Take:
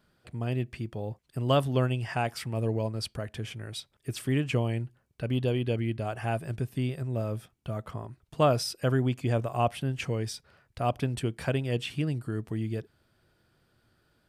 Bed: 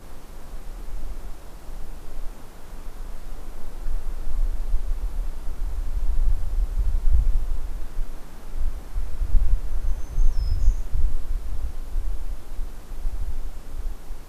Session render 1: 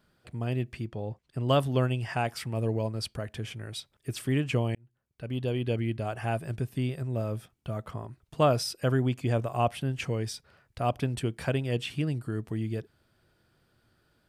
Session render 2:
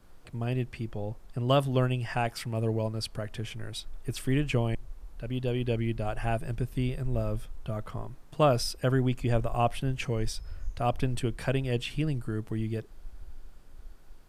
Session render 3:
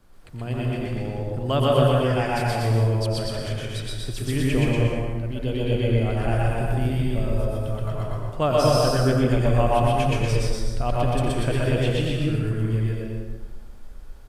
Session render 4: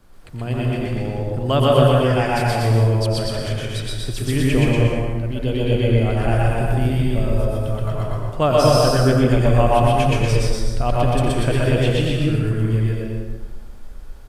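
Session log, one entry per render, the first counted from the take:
0.85–1.49 air absorption 53 m; 4.75–5.73 fade in
add bed -17 dB
loudspeakers at several distances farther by 31 m -11 dB, 43 m -1 dB, 82 m -4 dB; plate-style reverb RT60 1.3 s, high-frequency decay 0.6×, pre-delay 0.105 s, DRR -1 dB
gain +4.5 dB

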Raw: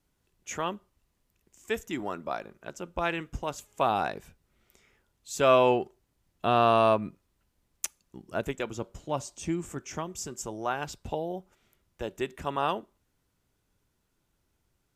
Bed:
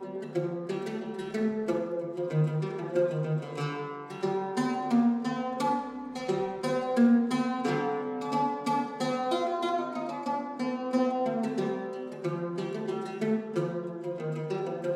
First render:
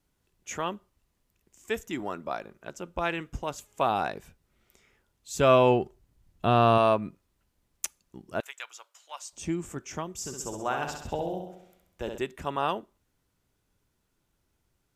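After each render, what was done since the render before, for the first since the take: 5.33–6.78 low shelf 170 Hz +12 dB; 8.4–9.33 Bessel high-pass 1400 Hz, order 4; 10.17–12.18 flutter echo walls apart 11.3 m, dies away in 0.75 s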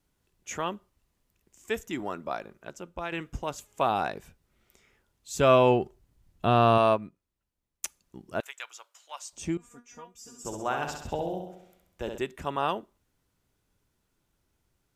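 2.53–3.12 fade out, to -7.5 dB; 6.93–7.85 upward expander, over -47 dBFS; 9.57–10.45 resonator 240 Hz, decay 0.16 s, mix 100%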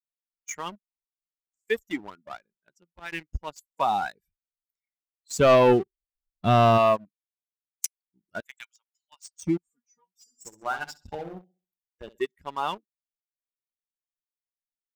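per-bin expansion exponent 2; sample leveller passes 2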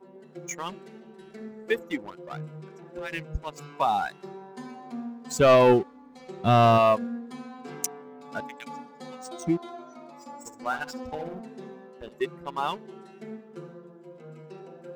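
add bed -12 dB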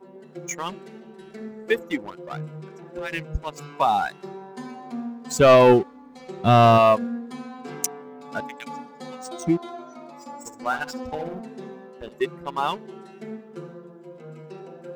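gain +4 dB

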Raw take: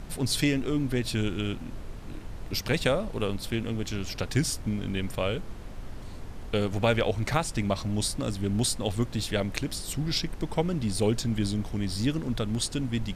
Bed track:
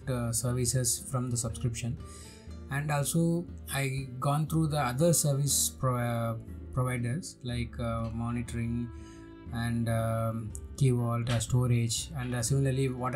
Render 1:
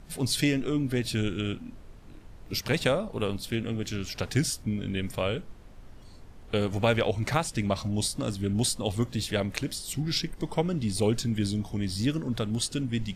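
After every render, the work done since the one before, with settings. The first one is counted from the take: noise print and reduce 9 dB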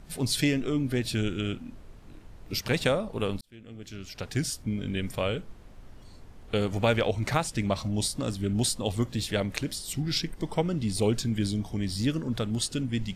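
3.41–4.81 fade in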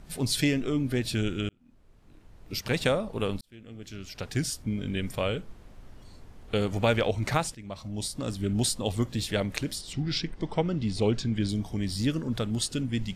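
1.49–2.89 fade in; 7.55–8.45 fade in, from -19 dB; 9.81–11.49 LPF 5200 Hz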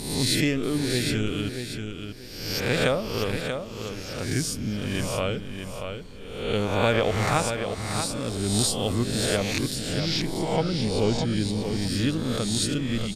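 spectral swells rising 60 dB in 0.93 s; on a send: feedback echo 0.635 s, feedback 25%, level -7 dB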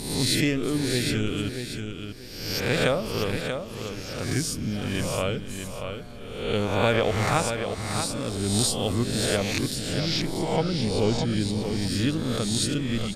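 add bed track -15.5 dB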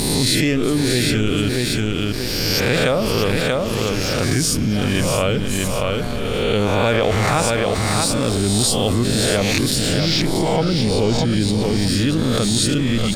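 sample leveller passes 1; fast leveller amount 70%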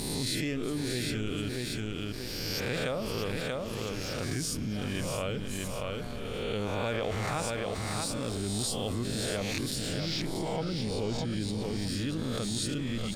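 gain -14.5 dB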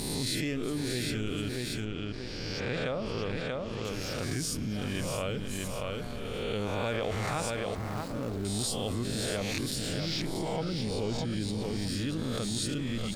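1.85–3.85 air absorption 110 m; 7.75–8.45 median filter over 15 samples

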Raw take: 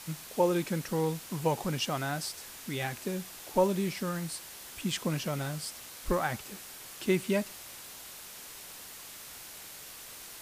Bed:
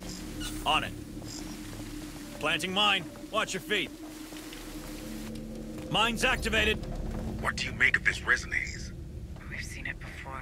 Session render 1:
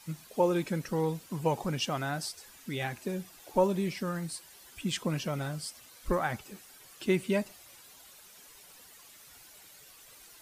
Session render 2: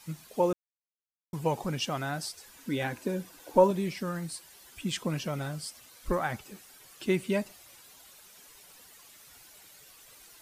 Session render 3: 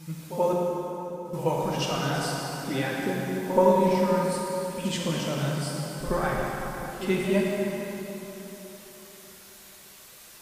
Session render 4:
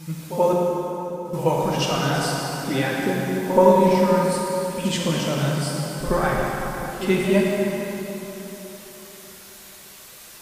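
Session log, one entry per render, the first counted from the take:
denoiser 11 dB, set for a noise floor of -47 dBFS
0.53–1.33 mute; 2.56–3.71 small resonant body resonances 290/500/970/1500 Hz, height 9 dB, ringing for 35 ms
pre-echo 78 ms -12.5 dB; plate-style reverb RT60 3.9 s, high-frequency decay 0.7×, DRR -3.5 dB
gain +5.5 dB; limiter -3 dBFS, peak gain reduction 0.5 dB

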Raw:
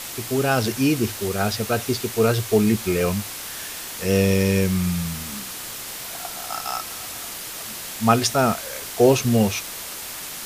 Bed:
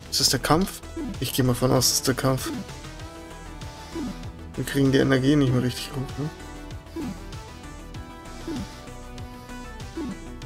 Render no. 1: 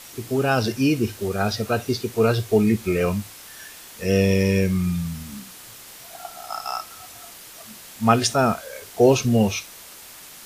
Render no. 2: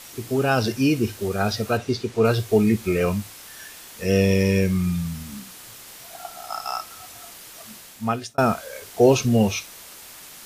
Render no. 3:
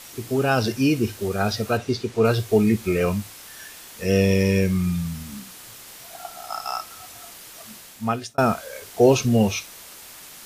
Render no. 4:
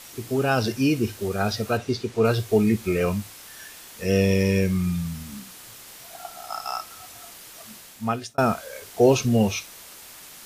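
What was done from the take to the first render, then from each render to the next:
noise print and reduce 9 dB
1.77–2.25 air absorption 55 m; 7.74–8.38 fade out
nothing audible
gain -1.5 dB

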